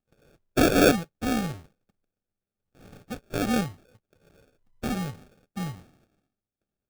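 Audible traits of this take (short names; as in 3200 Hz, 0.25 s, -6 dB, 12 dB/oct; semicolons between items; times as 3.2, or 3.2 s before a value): aliases and images of a low sample rate 1000 Hz, jitter 0%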